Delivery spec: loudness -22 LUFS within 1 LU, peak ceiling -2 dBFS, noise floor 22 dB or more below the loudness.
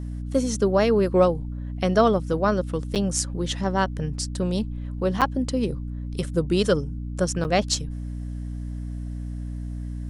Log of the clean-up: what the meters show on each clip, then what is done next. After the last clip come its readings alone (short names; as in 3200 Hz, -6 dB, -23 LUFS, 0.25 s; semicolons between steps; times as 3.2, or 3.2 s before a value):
dropouts 3; longest dropout 7.4 ms; hum 60 Hz; harmonics up to 300 Hz; hum level -29 dBFS; loudness -25.0 LUFS; peak -6.5 dBFS; loudness target -22.0 LUFS
-> interpolate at 2.95/5.21/7.44, 7.4 ms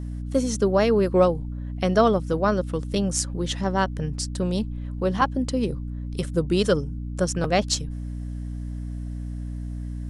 dropouts 0; hum 60 Hz; harmonics up to 300 Hz; hum level -29 dBFS
-> notches 60/120/180/240/300 Hz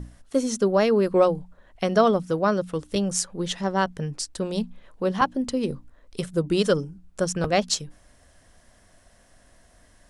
hum none; loudness -24.5 LUFS; peak -6.5 dBFS; loudness target -22.0 LUFS
-> gain +2.5 dB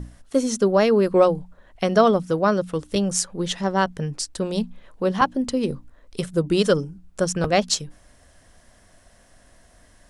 loudness -22.0 LUFS; peak -4.0 dBFS; noise floor -55 dBFS